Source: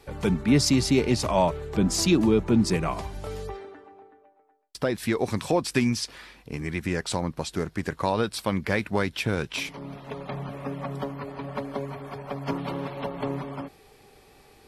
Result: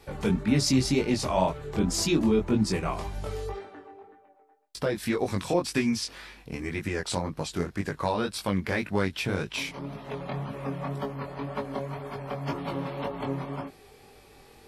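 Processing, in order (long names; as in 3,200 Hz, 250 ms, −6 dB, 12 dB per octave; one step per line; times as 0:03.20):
in parallel at −2 dB: downward compressor, threshold −33 dBFS, peak gain reduction 17 dB
on the sum: chorus effect 1.9 Hz, delay 19 ms, depth 4.3 ms
level −1 dB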